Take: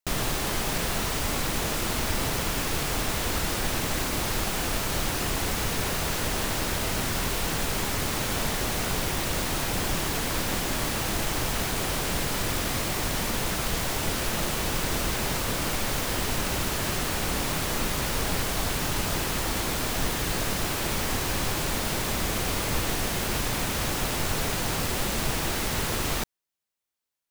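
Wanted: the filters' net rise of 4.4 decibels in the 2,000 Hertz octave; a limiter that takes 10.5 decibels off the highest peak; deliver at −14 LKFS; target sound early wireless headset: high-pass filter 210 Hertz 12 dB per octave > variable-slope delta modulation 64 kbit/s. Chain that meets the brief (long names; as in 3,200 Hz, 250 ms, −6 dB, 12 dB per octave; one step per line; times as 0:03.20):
parametric band 2,000 Hz +5.5 dB
brickwall limiter −23.5 dBFS
high-pass filter 210 Hz 12 dB per octave
variable-slope delta modulation 64 kbit/s
level +19 dB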